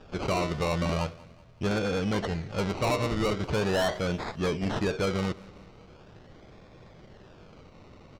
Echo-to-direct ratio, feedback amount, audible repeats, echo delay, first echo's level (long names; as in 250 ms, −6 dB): −20.5 dB, 48%, 3, 188 ms, −21.5 dB